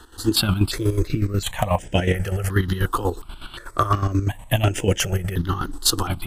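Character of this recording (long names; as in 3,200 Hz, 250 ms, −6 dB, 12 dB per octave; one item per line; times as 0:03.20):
chopped level 8.2 Hz, depth 65%, duty 40%
notches that jump at a steady rate 2.8 Hz 600–4,200 Hz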